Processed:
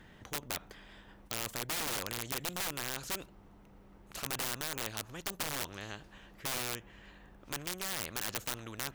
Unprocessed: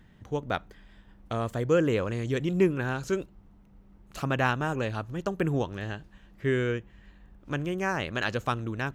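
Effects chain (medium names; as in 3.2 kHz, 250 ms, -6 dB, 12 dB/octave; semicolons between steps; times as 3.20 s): integer overflow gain 22 dB; spectrum-flattening compressor 2:1; trim +5 dB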